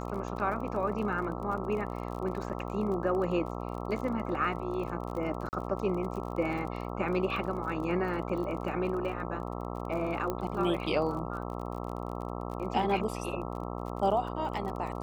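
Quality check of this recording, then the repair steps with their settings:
buzz 60 Hz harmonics 22 -37 dBFS
crackle 36/s -38 dBFS
2.49–2.5 gap 7.5 ms
5.49–5.53 gap 39 ms
10.3 pop -19 dBFS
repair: de-click; de-hum 60 Hz, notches 22; interpolate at 2.49, 7.5 ms; interpolate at 5.49, 39 ms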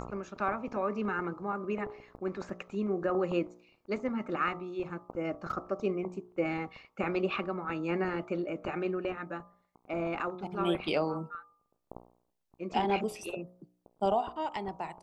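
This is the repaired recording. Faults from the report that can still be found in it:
10.3 pop

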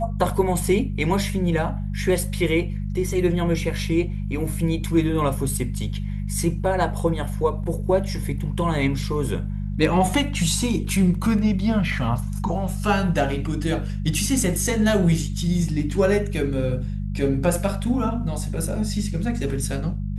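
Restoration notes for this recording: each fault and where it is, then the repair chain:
hum 50 Hz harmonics 4 -27 dBFS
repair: de-hum 50 Hz, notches 4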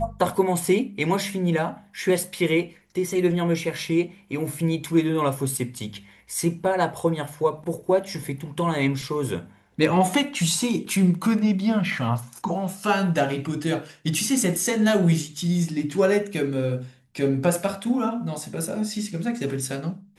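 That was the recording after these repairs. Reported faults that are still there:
none

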